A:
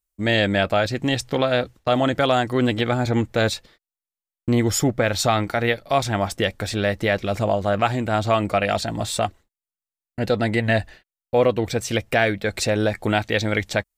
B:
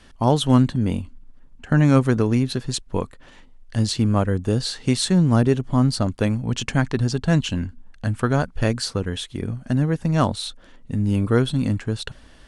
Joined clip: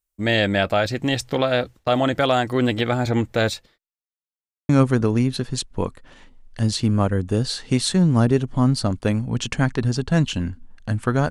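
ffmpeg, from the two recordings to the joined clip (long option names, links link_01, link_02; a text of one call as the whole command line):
ffmpeg -i cue0.wav -i cue1.wav -filter_complex "[0:a]apad=whole_dur=11.3,atrim=end=11.3,asplit=2[link_01][link_02];[link_01]atrim=end=3.99,asetpts=PTS-STARTPTS,afade=type=out:start_time=3.42:duration=0.57[link_03];[link_02]atrim=start=3.99:end=4.69,asetpts=PTS-STARTPTS,volume=0[link_04];[1:a]atrim=start=1.85:end=8.46,asetpts=PTS-STARTPTS,afade=type=in:duration=0.004:curve=hsin[link_05];[link_03][link_04][link_05]concat=n=3:v=0:a=1" out.wav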